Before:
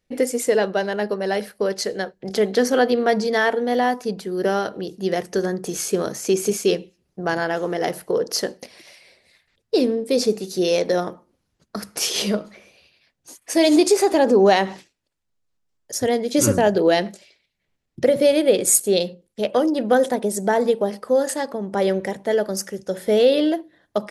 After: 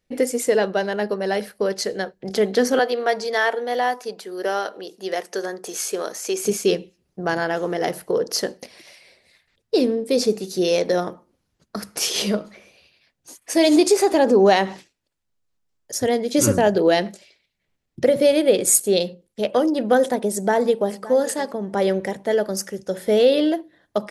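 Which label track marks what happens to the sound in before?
2.790000	6.450000	high-pass 480 Hz
20.320000	20.940000	echo throw 570 ms, feedback 10%, level -17.5 dB

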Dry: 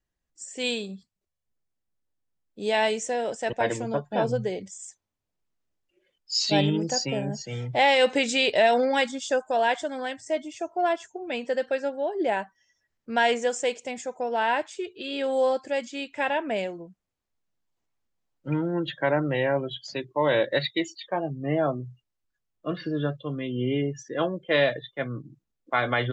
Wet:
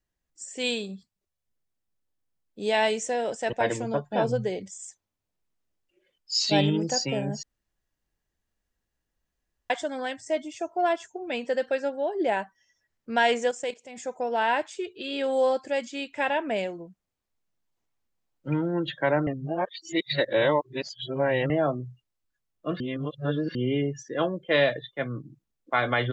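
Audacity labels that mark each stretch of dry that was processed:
7.430000	9.700000	room tone
13.510000	14.030000	level held to a coarse grid steps of 14 dB
19.270000	21.500000	reverse
22.800000	23.550000	reverse

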